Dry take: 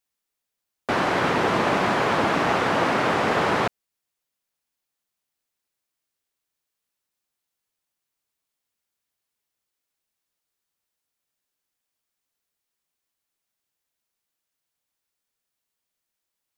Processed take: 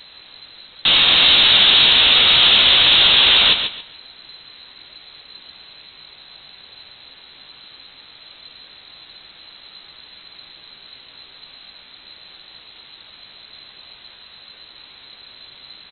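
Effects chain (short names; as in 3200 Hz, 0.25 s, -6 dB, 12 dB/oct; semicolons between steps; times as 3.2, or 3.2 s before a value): bell 2000 Hz -11.5 dB 0.73 oct; sample leveller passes 5; added noise pink -44 dBFS; doubler 17 ms -6.5 dB; feedback echo 0.145 s, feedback 25%, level -8 dB; inverted band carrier 3900 Hz; speed mistake 24 fps film run at 25 fps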